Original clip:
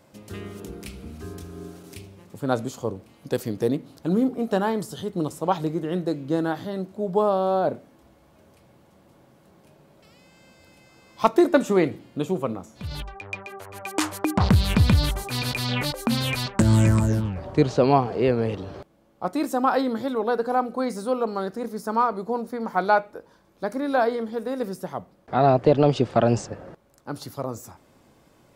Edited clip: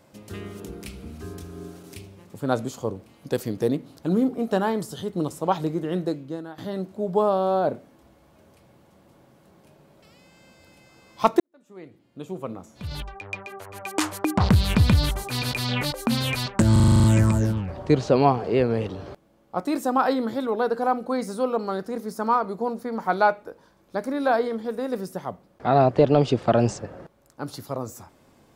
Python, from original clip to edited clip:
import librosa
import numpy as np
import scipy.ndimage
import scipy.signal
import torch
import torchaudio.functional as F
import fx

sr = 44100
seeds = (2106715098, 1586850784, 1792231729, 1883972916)

y = fx.edit(x, sr, fx.fade_out_to(start_s=6.07, length_s=0.51, curve='qua', floor_db=-14.5),
    fx.fade_in_span(start_s=11.4, length_s=1.48, curve='qua'),
    fx.stutter(start_s=16.72, slice_s=0.04, count=9), tone=tone)